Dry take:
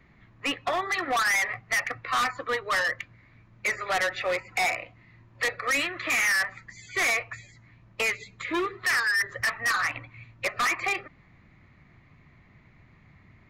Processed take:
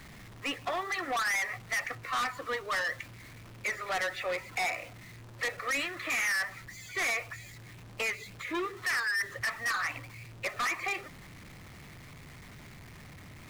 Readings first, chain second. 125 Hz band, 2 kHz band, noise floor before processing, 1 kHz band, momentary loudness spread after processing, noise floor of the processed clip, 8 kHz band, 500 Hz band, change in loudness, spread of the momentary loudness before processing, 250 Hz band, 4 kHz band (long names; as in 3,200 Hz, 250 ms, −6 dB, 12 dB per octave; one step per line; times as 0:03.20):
+0.5 dB, −5.5 dB, −58 dBFS, −5.5 dB, 20 LU, −50 dBFS, −5.5 dB, −5.5 dB, −5.5 dB, 10 LU, −5.0 dB, −5.5 dB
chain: converter with a step at zero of −38.5 dBFS
level −6.5 dB